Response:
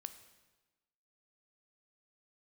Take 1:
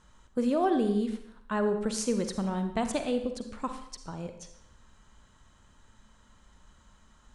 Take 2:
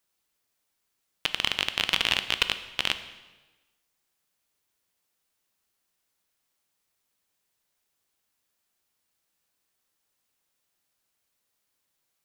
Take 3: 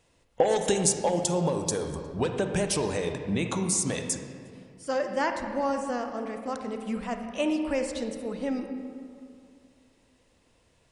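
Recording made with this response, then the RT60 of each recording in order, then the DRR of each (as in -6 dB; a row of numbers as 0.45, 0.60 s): 2; 0.75, 1.2, 2.3 s; 7.0, 10.0, 5.0 dB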